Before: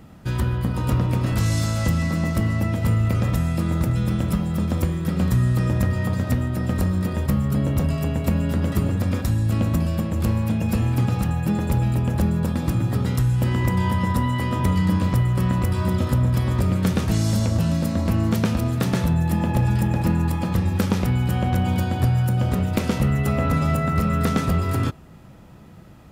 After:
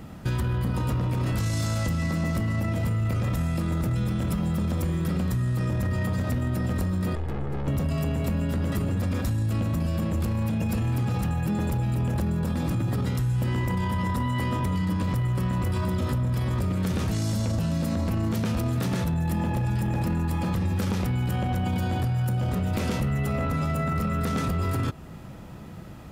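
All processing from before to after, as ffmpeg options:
-filter_complex "[0:a]asettb=1/sr,asplit=3[a][b][c];[a]atrim=end=7.154[d];[b]atrim=start=7.15:end=7.68,asetpts=PTS-STARTPTS,afade=t=in:d=0.004:c=qsin,afade=t=out:st=0.526:d=0.004:c=qsin,lowpass=f=1.5k:p=1,aeval=exprs='(tanh(35.5*val(0)+0.65)-tanh(0.65))/35.5':c=same,aecho=1:1:2.4:0.41,atrim=end_sample=23373[e];[c]atrim=start=7.676[f];[d][e]acrossfade=d=0.004:c1=hsin:c2=qsin[g];[g][f]acrossfade=d=0.004:c1=qsin:c2=hsin,alimiter=limit=-18.5dB:level=0:latency=1:release=15,acompressor=threshold=-29dB:ratio=2.5,volume=4dB"

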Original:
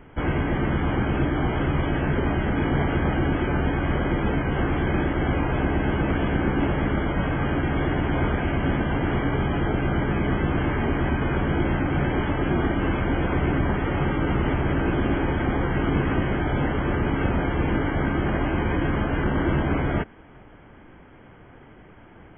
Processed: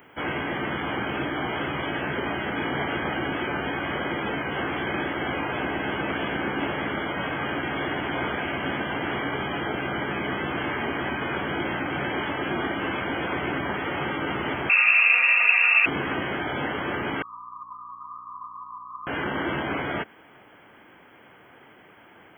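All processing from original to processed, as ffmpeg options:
-filter_complex "[0:a]asettb=1/sr,asplit=3[a][b][c];[a]atrim=end=14.694[d];[b]atrim=start=14.69:end=15.86,asetpts=PTS-STARTPTS,afade=t=in:d=0.004:c=qsin,afade=t=out:st=1.166:d=0.004:c=qsin,lowpass=f=2.4k:t=q:w=0.5098,lowpass=f=2.4k:t=q:w=0.6013,lowpass=f=2.4k:t=q:w=0.9,lowpass=f=2.4k:t=q:w=2.563,afreqshift=-2800,aecho=1:1:4.2:0.71,atrim=end_sample=51597[e];[c]atrim=start=15.856[f];[d][e]acrossfade=d=0.004:c1=hsin:c2=qsin[g];[g][f]acrossfade=d=0.004:c1=qsin:c2=hsin,asettb=1/sr,asplit=3[h][i][j];[h]atrim=end=17.224[k];[i]atrim=start=17.22:end=19.07,asetpts=PTS-STARTPTS,afade=t=in:d=0.004:c=qsin,afade=t=out:st=1.846:d=0.004:c=qsin,asuperpass=centerf=1100:order=12:qfactor=4.1,aeval=exprs='val(0)+0.00316*(sin(2*PI*60*n/s)+sin(2*PI*2*60*n/s)/2+sin(2*PI*3*60*n/s)/3+sin(2*PI*4*60*n/s)/4+sin(2*PI*5*60*n/s)/5)':c=same[l];[j]atrim=start=19.066[m];[k][l]acrossfade=d=0.004:c1=hsin:c2=qsin[n];[n][m]acrossfade=d=0.004:c1=qsin:c2=hsin,highpass=72,aemphasis=mode=production:type=riaa"

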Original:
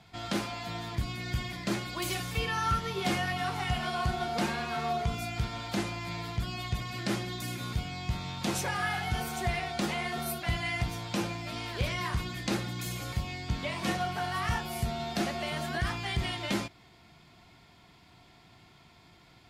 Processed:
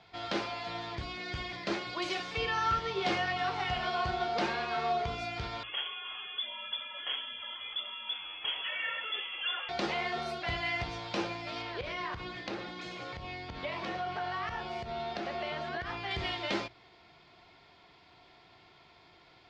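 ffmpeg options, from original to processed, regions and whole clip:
-filter_complex "[0:a]asettb=1/sr,asplit=3[a][b][c];[a]atrim=end=5.634[d];[b]atrim=start=5.63:end=9.69,asetpts=PTS-STARTPTS,afade=t=in:d=0.004:c=qsin,afade=t=out:st=4.056:d=0.004:c=qsin,flanger=delay=1.7:depth=5.1:regen=45:speed=1.5:shape=sinusoidal,lowpass=f=3k:t=q:w=0.5098,lowpass=f=3k:t=q:w=0.6013,lowpass=f=3k:t=q:w=0.9,lowpass=f=3k:t=q:w=2.563,afreqshift=-3500[e];[c]atrim=start=9.686[f];[d][e]acrossfade=d=0.004:c1=hsin:c2=qsin[g];[g][f]acrossfade=d=0.004:c1=qsin:c2=hsin,asettb=1/sr,asplit=3[h][i][j];[h]atrim=end=11.624[k];[i]atrim=start=11.62:end=16.11,asetpts=PTS-STARTPTS,afade=t=in:d=0.004:c=qsin,afade=t=out:st=4.486:d=0.004:c=qsin,lowpass=f=3.3k:p=1,acompressor=threshold=-31dB:ratio=6:attack=3.2:release=140:knee=1:detection=peak[l];[j]atrim=start=16.106[m];[k][l]acrossfade=d=0.004:c1=hsin:c2=qsin[n];[n][m]acrossfade=d=0.004:c1=qsin:c2=hsin,lowpass=f=5.2k:w=0.5412,lowpass=f=5.2k:w=1.3066,lowshelf=f=300:t=q:w=1.5:g=-7,bandreject=f=60:t=h:w=6,bandreject=f=120:t=h:w=6"

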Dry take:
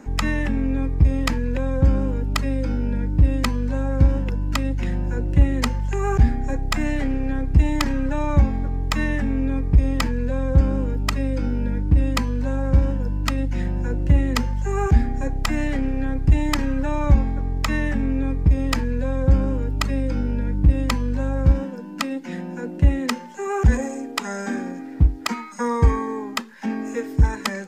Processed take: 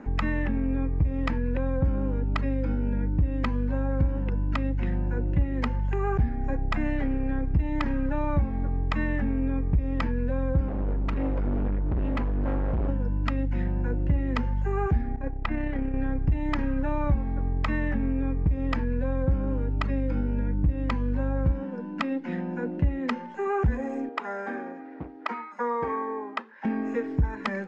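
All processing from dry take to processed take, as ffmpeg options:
-filter_complex "[0:a]asettb=1/sr,asplit=3[a][b][c];[a]atrim=end=10.684[d];[b]atrim=start=10.68:end=12.89,asetpts=PTS-STARTPTS,afade=t=in:d=0.004:c=qsin,afade=t=out:st=2.206:d=0.004:c=qsin,highshelf=f=3.9k:g=-10,aphaser=in_gain=1:out_gain=1:delay=4.5:decay=0.36:speed=1.1:type=sinusoidal,volume=22.5dB,asoftclip=hard,volume=-22.5dB[e];[c]atrim=start=12.886[f];[d][e]acrossfade=d=0.004:c1=hsin:c2=qsin[g];[g][f]acrossfade=d=0.004:c1=qsin:c2=hsin,asettb=1/sr,asplit=3[h][i][j];[h]atrim=end=15.164[k];[i]atrim=start=15.16:end=15.94,asetpts=PTS-STARTPTS,afade=t=in:d=0.004:c=qsin,afade=t=out:st=0.776:d=0.004:c=qsin,lowpass=4.1k,agate=range=-33dB:threshold=-15dB:ratio=3:release=100:detection=peak,acontrast=33[l];[j]atrim=start=15.936[m];[k][l]acrossfade=d=0.004:c1=hsin:c2=qsin[n];[n][m]acrossfade=d=0.004:c1=qsin:c2=hsin,asettb=1/sr,asplit=3[o][p][q];[o]atrim=end=24.094[r];[p]atrim=start=24.09:end=26.65,asetpts=PTS-STARTPTS,afade=t=in:d=0.004:c=qsin,afade=t=out:st=2.556:d=0.004:c=qsin,highpass=430,highshelf=f=2.7k:g=-9.5[s];[q]atrim=start=26.646[t];[r][s]acrossfade=d=0.004:c1=hsin:c2=qsin[u];[u][t]acrossfade=d=0.004:c1=qsin:c2=hsin,lowpass=2.3k,acompressor=threshold=-24dB:ratio=2.5"

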